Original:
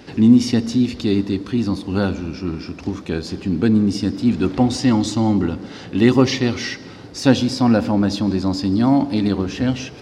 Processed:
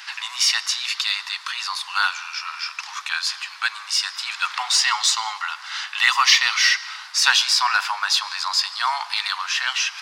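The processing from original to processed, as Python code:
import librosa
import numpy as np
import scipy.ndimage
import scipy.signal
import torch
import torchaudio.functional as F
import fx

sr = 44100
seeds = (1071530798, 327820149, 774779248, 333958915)

p1 = scipy.signal.sosfilt(scipy.signal.butter(8, 1000.0, 'highpass', fs=sr, output='sos'), x)
p2 = np.clip(p1, -10.0 ** (-25.5 / 20.0), 10.0 ** (-25.5 / 20.0))
p3 = p1 + F.gain(torch.from_numpy(p2), -12.0).numpy()
y = F.gain(torch.from_numpy(p3), 9.0).numpy()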